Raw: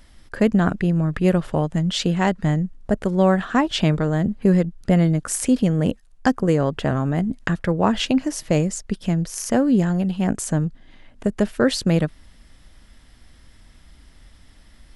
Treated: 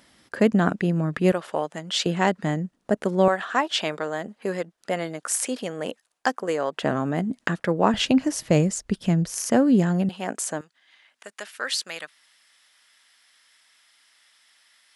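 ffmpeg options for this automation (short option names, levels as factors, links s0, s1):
-af "asetnsamples=n=441:p=0,asendcmd='1.32 highpass f 490;2.06 highpass f 230;3.28 highpass f 550;6.83 highpass f 220;7.94 highpass f 60;9.37 highpass f 150;10.09 highpass f 470;10.61 highpass f 1400',highpass=190"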